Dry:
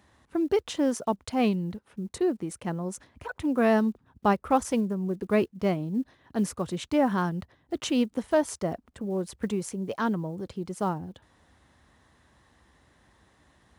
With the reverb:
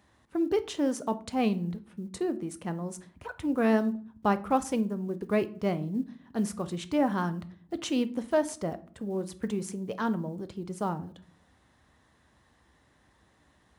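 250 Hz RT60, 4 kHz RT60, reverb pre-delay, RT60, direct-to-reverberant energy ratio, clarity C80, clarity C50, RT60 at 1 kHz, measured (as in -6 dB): 0.75 s, 0.30 s, 4 ms, 0.45 s, 11.5 dB, 22.5 dB, 17.5 dB, 0.40 s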